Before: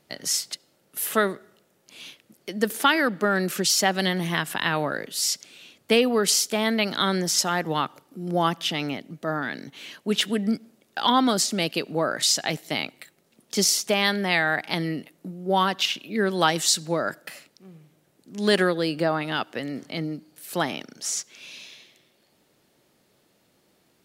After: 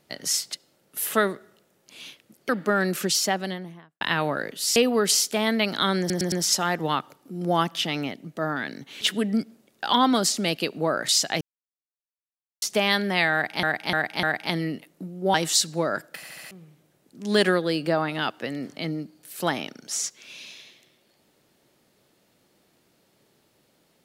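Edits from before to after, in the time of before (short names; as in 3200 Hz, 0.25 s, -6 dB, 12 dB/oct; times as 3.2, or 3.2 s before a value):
2.49–3.04 cut
3.56–4.56 studio fade out
5.31–5.95 cut
7.18 stutter 0.11 s, 4 plays
9.87–10.15 cut
12.55–13.76 mute
14.47–14.77 loop, 4 plays
15.58–16.47 cut
17.29 stutter in place 0.07 s, 5 plays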